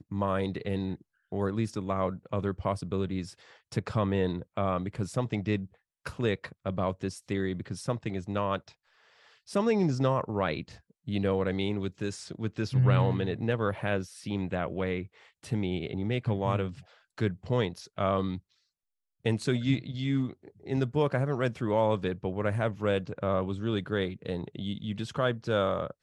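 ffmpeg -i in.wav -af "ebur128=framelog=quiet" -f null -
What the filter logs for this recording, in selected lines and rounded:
Integrated loudness:
  I:         -30.8 LUFS
  Threshold: -41.2 LUFS
Loudness range:
  LRA:         3.5 LU
  Threshold: -51.2 LUFS
  LRA low:   -33.1 LUFS
  LRA high:  -29.6 LUFS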